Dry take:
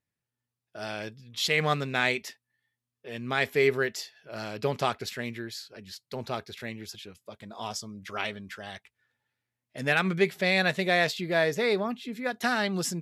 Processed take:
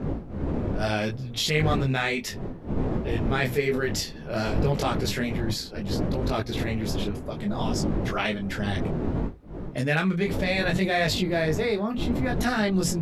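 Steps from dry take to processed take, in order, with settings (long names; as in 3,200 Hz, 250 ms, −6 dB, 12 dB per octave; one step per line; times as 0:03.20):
wind on the microphone 400 Hz −38 dBFS
low-shelf EQ 280 Hz +10 dB
mains-hum notches 60/120/180 Hz
in parallel at +3 dB: compressor whose output falls as the input rises −33 dBFS, ratio −1
on the sum: micro pitch shift up and down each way 22 cents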